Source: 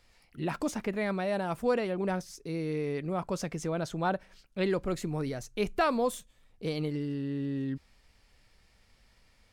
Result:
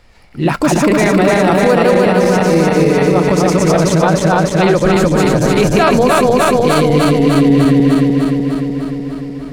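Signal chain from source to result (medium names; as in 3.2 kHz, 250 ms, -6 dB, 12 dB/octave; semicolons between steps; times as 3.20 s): backward echo that repeats 150 ms, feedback 84%, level -1 dB; loudness maximiser +19 dB; tape noise reduction on one side only decoder only; trim -1 dB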